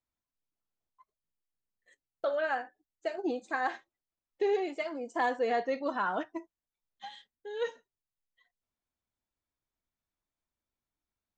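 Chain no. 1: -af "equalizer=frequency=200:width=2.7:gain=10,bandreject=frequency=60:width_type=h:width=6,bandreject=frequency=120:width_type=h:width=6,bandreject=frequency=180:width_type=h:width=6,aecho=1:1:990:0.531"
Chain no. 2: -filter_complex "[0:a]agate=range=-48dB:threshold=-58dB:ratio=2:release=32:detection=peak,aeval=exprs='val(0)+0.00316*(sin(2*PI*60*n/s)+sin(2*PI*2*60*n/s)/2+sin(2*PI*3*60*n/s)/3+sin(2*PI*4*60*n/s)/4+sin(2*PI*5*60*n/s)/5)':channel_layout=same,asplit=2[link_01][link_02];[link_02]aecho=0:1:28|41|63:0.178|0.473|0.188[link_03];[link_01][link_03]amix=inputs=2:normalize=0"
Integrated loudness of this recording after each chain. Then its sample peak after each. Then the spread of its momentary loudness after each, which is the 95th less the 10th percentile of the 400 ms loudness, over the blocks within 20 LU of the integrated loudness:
−33.0, −32.5 LKFS; −17.0, −15.5 dBFS; 13, 17 LU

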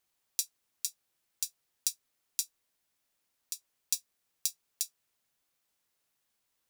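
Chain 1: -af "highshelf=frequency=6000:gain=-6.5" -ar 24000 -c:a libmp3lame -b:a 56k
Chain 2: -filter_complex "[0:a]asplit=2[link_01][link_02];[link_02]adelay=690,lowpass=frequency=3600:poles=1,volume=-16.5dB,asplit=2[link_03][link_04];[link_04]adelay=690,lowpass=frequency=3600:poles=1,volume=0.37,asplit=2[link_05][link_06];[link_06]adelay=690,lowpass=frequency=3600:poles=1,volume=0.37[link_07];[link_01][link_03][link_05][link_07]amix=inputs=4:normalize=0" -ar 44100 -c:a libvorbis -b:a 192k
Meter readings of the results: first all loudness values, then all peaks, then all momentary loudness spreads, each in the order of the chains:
−42.0, −36.5 LKFS; −12.5, −6.0 dBFS; 8, 8 LU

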